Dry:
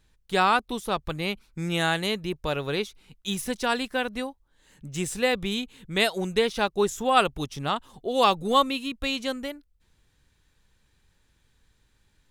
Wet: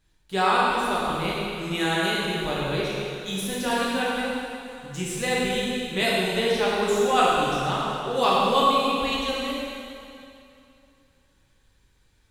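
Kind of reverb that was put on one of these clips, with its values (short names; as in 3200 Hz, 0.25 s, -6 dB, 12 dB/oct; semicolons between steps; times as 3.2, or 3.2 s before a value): plate-style reverb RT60 2.7 s, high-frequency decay 0.9×, DRR -6.5 dB; gain -5 dB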